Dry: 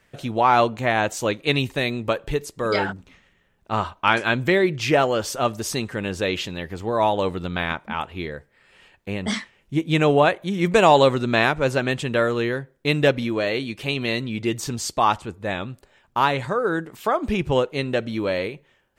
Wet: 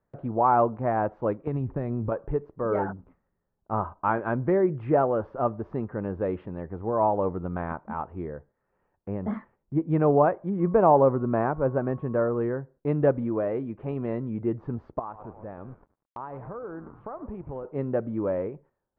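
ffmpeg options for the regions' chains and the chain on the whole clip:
-filter_complex "[0:a]asettb=1/sr,asplit=3[s0][s1][s2];[s0]atrim=end=1.474[s3];[s1]atrim=start=1.47:end=2.12,asetpts=PTS-STARTPTS,afade=t=in:d=0.004:c=qsin,afade=t=out:st=0.646:d=0.004:c=qsin,lowshelf=f=180:g=11.5,acompressor=threshold=0.1:ratio=6:attack=3.2:release=140:knee=1:detection=peak,aeval=exprs='val(0)*gte(abs(val(0)),0.00422)':c=same[s4];[s2]atrim=start=2.116[s5];[s3][s4]acrossfade=d=0.004:c1=hsin:c2=qsin[s6];[s6][s5]acrossfade=d=0.004:c1=qsin:c2=hsin,asettb=1/sr,asplit=3[s7][s8][s9];[s7]atrim=end=10.604[s10];[s8]atrim=start=10.6:end=12.41,asetpts=PTS-STARTPTS,afade=t=in:d=0.004:c=qsin,afade=t=out:st=1.806:d=0.004:c=qsin,aeval=exprs='val(0)+0.00562*sin(2*PI*1100*n/s)':c=same,highshelf=f=3000:g=-11[s11];[s9]atrim=start=12.406[s12];[s10][s11]acrossfade=d=0.004:c1=hsin:c2=qsin[s13];[s13][s12]acrossfade=d=0.004:c1=qsin:c2=hsin,asettb=1/sr,asplit=3[s14][s15][s16];[s14]atrim=end=14.994[s17];[s15]atrim=start=14.99:end=17.65,asetpts=PTS-STARTPTS,afade=t=in:d=0.004:c=qsin,afade=t=out:st=2.656:d=0.004:c=qsin,asplit=7[s18][s19][s20][s21][s22][s23][s24];[s19]adelay=103,afreqshift=-100,volume=0.126[s25];[s20]adelay=206,afreqshift=-200,volume=0.0767[s26];[s21]adelay=309,afreqshift=-300,volume=0.0468[s27];[s22]adelay=412,afreqshift=-400,volume=0.0285[s28];[s23]adelay=515,afreqshift=-500,volume=0.0174[s29];[s24]adelay=618,afreqshift=-600,volume=0.0106[s30];[s18][s25][s26][s27][s28][s29][s30]amix=inputs=7:normalize=0,atrim=end_sample=117306,acompressor=threshold=0.0251:ratio=3:attack=3.2:release=140:knee=1:detection=peak,aeval=exprs='sgn(val(0))*max(abs(val(0))-0.00398,0)':c=same[s31];[s16]atrim=start=17.646[s32];[s17][s31]acrossfade=d=0.004:c1=hsin:c2=qsin[s33];[s33][s32]acrossfade=d=0.004:c1=qsin:c2=hsin,lowpass=f=1200:w=0.5412,lowpass=f=1200:w=1.3066,agate=range=0.316:threshold=0.00316:ratio=16:detection=peak,volume=0.708"

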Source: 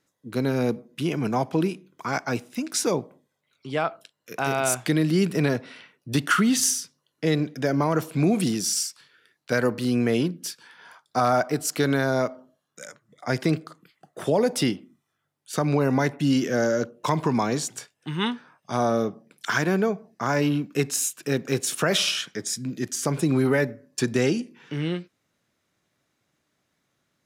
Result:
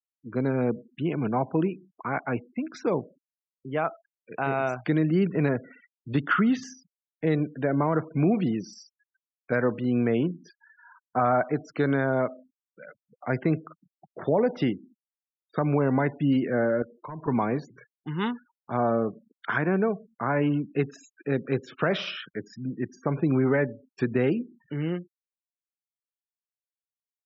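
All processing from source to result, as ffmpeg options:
-filter_complex "[0:a]asettb=1/sr,asplit=3[s0][s1][s2];[s0]atrim=end=16.824[s3];[s1]atrim=start=16.82:end=17.28,asetpts=PTS-STARTPTS,afade=t=in:d=0.004:c=qsin,afade=t=out:st=0.456:d=0.004:c=qsin,volume=9.44,asoftclip=hard,volume=0.106,acompressor=threshold=0.00794:ratio=2:attack=3.2:release=140:knee=1:detection=peak[s4];[s2]atrim=start=17.276[s5];[s3][s4]acrossfade=d=0.004:c1=hsin:c2=qsin[s6];[s6][s5]acrossfade=d=0.004:c1=qsin:c2=hsin,lowpass=2100,afftfilt=real='re*gte(hypot(re,im),0.01)':imag='im*gte(hypot(re,im),0.01)':win_size=1024:overlap=0.75,volume=0.841"

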